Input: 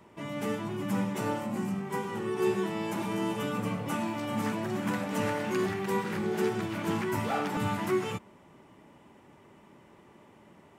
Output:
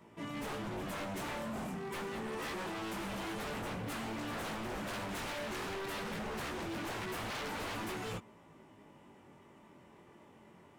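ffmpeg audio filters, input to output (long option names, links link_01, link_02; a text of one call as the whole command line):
ffmpeg -i in.wav -af "flanger=delay=17.5:depth=5.6:speed=0.25,aeval=exprs='0.0178*(abs(mod(val(0)/0.0178+3,4)-2)-1)':channel_layout=same" out.wav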